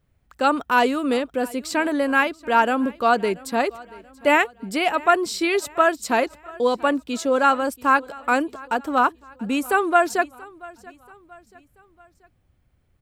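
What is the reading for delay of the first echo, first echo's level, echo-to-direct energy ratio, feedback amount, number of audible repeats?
683 ms, -22.0 dB, -21.0 dB, 46%, 2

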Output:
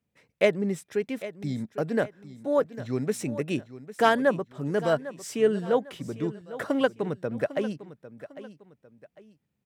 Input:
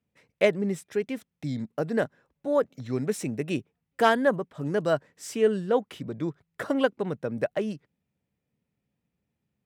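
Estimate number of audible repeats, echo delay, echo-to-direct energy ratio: 2, 801 ms, -14.5 dB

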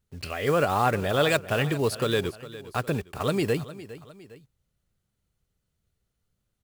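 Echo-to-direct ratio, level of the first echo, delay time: -15.0 dB, -16.0 dB, 407 ms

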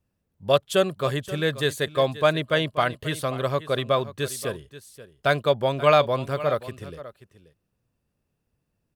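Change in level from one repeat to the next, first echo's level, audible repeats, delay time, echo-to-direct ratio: no regular repeats, -15.5 dB, 1, 532 ms, -15.5 dB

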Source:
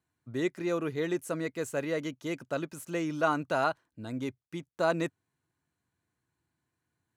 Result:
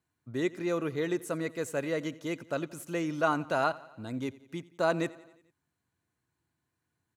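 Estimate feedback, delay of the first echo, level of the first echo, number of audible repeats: 59%, 88 ms, -20.5 dB, 4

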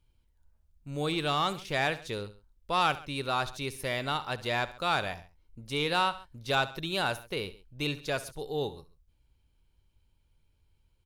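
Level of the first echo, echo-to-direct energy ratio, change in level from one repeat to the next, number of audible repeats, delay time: -16.5 dB, -15.0 dB, -5.0 dB, 2, 68 ms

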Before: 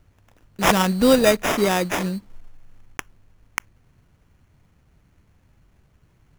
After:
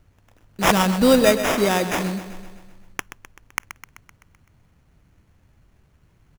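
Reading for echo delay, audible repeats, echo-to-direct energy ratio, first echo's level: 128 ms, 6, -10.0 dB, -12.0 dB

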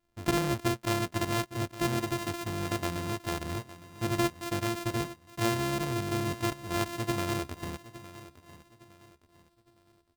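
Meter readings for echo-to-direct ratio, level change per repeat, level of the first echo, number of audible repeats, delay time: -15.5 dB, -9.0 dB, -16.0 dB, 3, 861 ms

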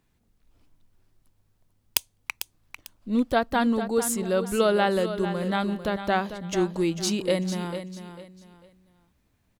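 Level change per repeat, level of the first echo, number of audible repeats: -11.0 dB, -10.5 dB, 3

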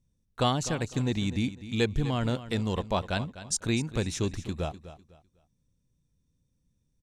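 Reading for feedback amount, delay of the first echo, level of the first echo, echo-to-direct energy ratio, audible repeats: 28%, 251 ms, -14.0 dB, -13.5 dB, 2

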